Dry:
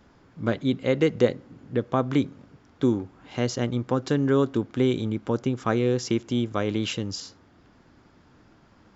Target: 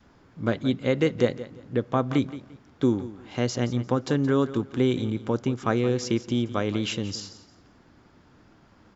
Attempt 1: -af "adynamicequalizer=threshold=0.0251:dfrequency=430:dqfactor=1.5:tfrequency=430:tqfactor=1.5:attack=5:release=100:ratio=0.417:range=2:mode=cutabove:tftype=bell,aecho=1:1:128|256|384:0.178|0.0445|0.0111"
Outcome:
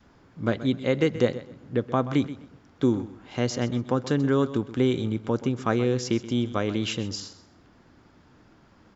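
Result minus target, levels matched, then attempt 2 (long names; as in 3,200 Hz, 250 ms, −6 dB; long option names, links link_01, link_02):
echo 45 ms early
-af "adynamicequalizer=threshold=0.0251:dfrequency=430:dqfactor=1.5:tfrequency=430:tqfactor=1.5:attack=5:release=100:ratio=0.417:range=2:mode=cutabove:tftype=bell,aecho=1:1:173|346|519:0.178|0.0445|0.0111"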